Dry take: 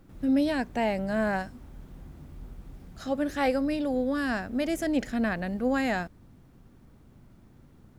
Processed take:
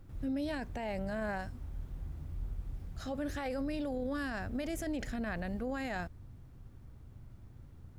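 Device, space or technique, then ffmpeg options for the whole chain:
car stereo with a boomy subwoofer: -af "lowshelf=f=140:t=q:w=1.5:g=8,alimiter=level_in=1dB:limit=-24dB:level=0:latency=1:release=20,volume=-1dB,volume=-4dB"

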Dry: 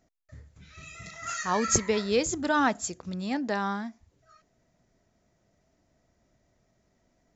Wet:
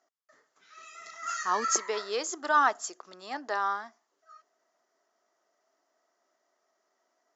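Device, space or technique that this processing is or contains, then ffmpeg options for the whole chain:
phone speaker on a table: -filter_complex "[0:a]highpass=f=420:w=0.5412,highpass=f=420:w=1.3066,equalizer=f=510:t=q:w=4:g=-8,equalizer=f=1.2k:t=q:w=4:g=7,equalizer=f=2.4k:t=q:w=4:g=-8,equalizer=f=3.8k:t=q:w=4:g=-5,lowpass=f=6.9k:w=0.5412,lowpass=f=6.9k:w=1.3066,asplit=3[a][b][c];[a]afade=t=out:st=1.11:d=0.02[d];[b]asubboost=boost=10.5:cutoff=240,afade=t=in:st=1.11:d=0.02,afade=t=out:st=1.64:d=0.02[e];[c]afade=t=in:st=1.64:d=0.02[f];[d][e][f]amix=inputs=3:normalize=0"

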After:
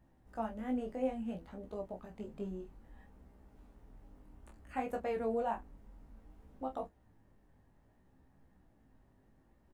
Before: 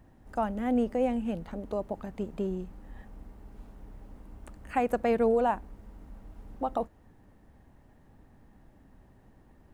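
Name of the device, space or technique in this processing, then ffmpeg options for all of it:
double-tracked vocal: -filter_complex "[0:a]asplit=2[a][b];[b]adelay=27,volume=-7dB[c];[a][c]amix=inputs=2:normalize=0,flanger=delay=15:depth=4.8:speed=0.6,volume=-7dB"

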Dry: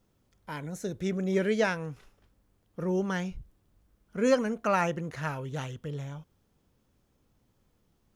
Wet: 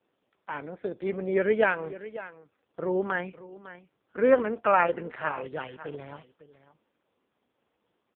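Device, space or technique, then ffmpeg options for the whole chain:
satellite phone: -af "highpass=360,lowpass=3.3k,aecho=1:1:552:0.168,volume=6dB" -ar 8000 -c:a libopencore_amrnb -b:a 4750

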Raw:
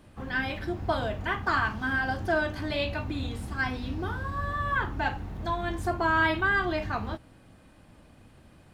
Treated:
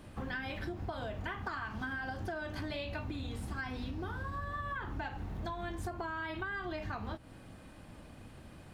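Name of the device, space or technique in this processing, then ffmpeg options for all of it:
serial compression, leveller first: -af "acompressor=threshold=-28dB:ratio=6,acompressor=threshold=-39dB:ratio=6,volume=2.5dB"

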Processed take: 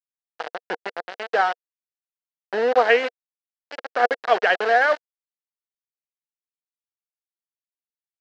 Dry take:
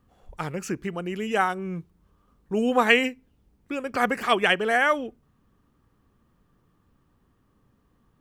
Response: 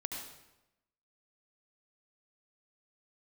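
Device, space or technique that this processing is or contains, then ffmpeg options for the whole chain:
hand-held game console: -af "acrusher=bits=3:mix=0:aa=0.000001,highpass=470,equalizer=f=480:t=q:w=4:g=8,equalizer=f=700:t=q:w=4:g=8,equalizer=f=1.1k:t=q:w=4:g=-4,equalizer=f=1.6k:t=q:w=4:g=5,equalizer=f=2.4k:t=q:w=4:g=-6,equalizer=f=3.5k:t=q:w=4:g=-7,lowpass=f=4k:w=0.5412,lowpass=f=4k:w=1.3066"

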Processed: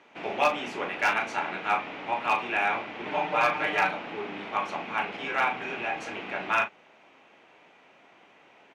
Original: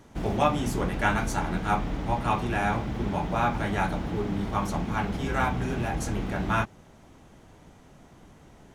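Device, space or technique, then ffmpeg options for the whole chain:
megaphone: -filter_complex "[0:a]asettb=1/sr,asplit=3[a][b][c];[a]atrim=end=3.054[d];[b]atrim=start=3.05:end=3.91,asetpts=PTS-STARTPTS,afade=t=in:d=0.004:c=qsin,afade=t=out:st=0.856:d=0.004:c=qsin,aecho=1:1:6.6:0.95,atrim=end_sample=37926[e];[c]atrim=start=3.906[f];[d][e]acrossfade=d=0.004:c1=hsin:c2=qsin[g];[g][f]acrossfade=d=0.004:c1=qsin:c2=hsin,highpass=480,lowpass=3.5k,equalizer=f=2.5k:t=o:w=0.57:g=11,asoftclip=type=hard:threshold=-15.5dB,asplit=2[h][i];[i]adelay=37,volume=-9.5dB[j];[h][j]amix=inputs=2:normalize=0"

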